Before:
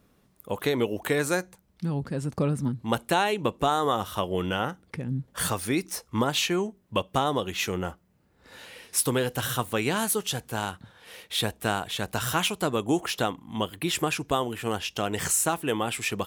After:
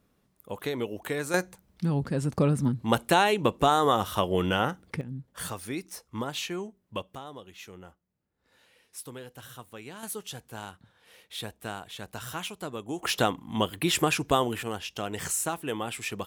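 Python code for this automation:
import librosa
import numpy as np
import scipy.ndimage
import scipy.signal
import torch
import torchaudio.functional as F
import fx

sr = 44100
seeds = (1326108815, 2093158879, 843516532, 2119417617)

y = fx.gain(x, sr, db=fx.steps((0.0, -6.0), (1.34, 2.0), (5.01, -8.0), (7.15, -17.0), (10.03, -10.0), (13.03, 2.0), (14.63, -5.0)))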